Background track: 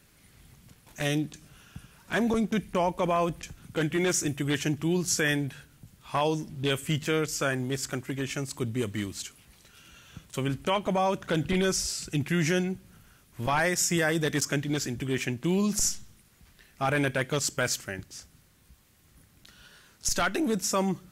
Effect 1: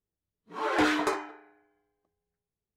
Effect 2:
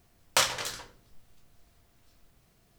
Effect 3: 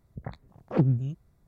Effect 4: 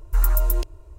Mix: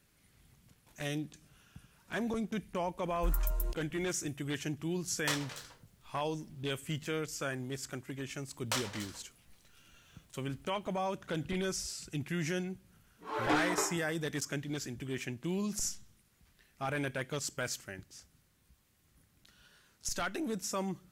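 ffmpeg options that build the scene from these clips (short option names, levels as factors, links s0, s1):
-filter_complex "[2:a]asplit=2[s0][s1];[0:a]volume=0.355[s2];[4:a]atrim=end=0.98,asetpts=PTS-STARTPTS,volume=0.224,afade=t=in:d=0.004:c=hsin,afade=t=out:st=0.976:d=0.004:c=hsin,adelay=3100[s3];[s0]atrim=end=2.78,asetpts=PTS-STARTPTS,volume=0.266,afade=t=in:d=0.004:c=hsin,afade=t=out:st=2.776:d=0.004:c=hsin,adelay=4910[s4];[s1]atrim=end=2.78,asetpts=PTS-STARTPTS,volume=0.299,afade=t=in:d=0.004:c=hsin,afade=t=out:st=2.776:d=0.004:c=hsin,adelay=8350[s5];[1:a]atrim=end=2.76,asetpts=PTS-STARTPTS,volume=0.501,afade=t=in:d=0.004:c=hsin,afade=t=out:st=2.756:d=0.004:c=hsin,adelay=12710[s6];[s2][s3][s4][s5][s6]amix=inputs=5:normalize=0"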